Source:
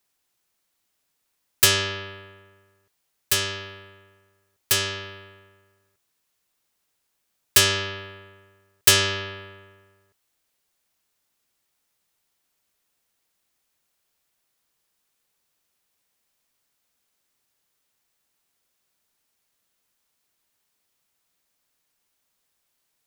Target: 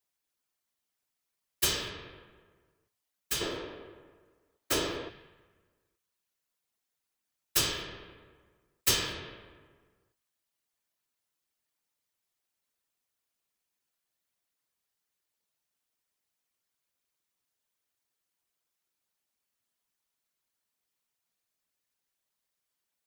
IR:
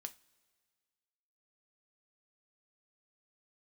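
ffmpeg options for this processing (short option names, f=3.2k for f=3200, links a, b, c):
-filter_complex "[0:a]asettb=1/sr,asplit=3[a][b][c];[a]atrim=end=3.414[d];[b]atrim=start=3.41:end=5.09,asetpts=PTS-STARTPTS,afade=t=in:d=0.004:c=qsin,afade=t=out:st=1.676:d=0.004:c=qsin,equalizer=f=470:w=0.39:g=12[e];[c]atrim=start=5.086[f];[d][e]acrossfade=d=0.004:c1=hsin:c2=qsin[g];[g][f]acrossfade=d=0.004:c1=qsin:c2=hsin[h];[1:a]atrim=start_sample=2205,afade=t=out:st=0.29:d=0.01,atrim=end_sample=13230[i];[h][i]afir=irnorm=-1:irlink=0,afftfilt=real='hypot(re,im)*cos(2*PI*random(0))':imag='hypot(re,im)*sin(2*PI*random(1))':win_size=512:overlap=0.75"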